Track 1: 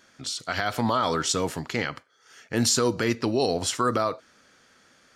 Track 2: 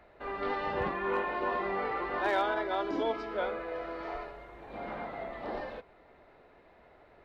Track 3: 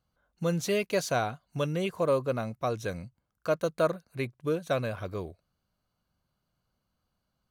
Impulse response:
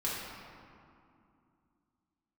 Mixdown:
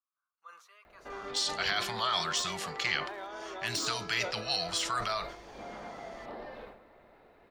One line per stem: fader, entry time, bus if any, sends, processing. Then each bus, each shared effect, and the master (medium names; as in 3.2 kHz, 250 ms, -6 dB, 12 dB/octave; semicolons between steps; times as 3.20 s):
-8.0 dB, 1.10 s, no send, frequency weighting D; de-esser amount 40%; elliptic band-stop 190–660 Hz
-3.0 dB, 0.85 s, send -16 dB, treble shelf 8.2 kHz +10 dB; compression 6:1, threshold -38 dBFS, peak gain reduction 12.5 dB
-11.0 dB, 0.00 s, send -23.5 dB, ladder high-pass 1.1 kHz, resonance 80%; treble shelf 3.5 kHz -12 dB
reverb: on, RT60 2.5 s, pre-delay 4 ms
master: decay stretcher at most 83 dB/s